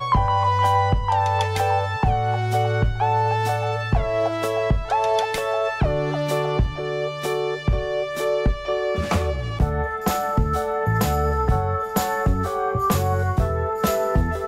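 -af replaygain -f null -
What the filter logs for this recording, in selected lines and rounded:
track_gain = +5.0 dB
track_peak = 0.276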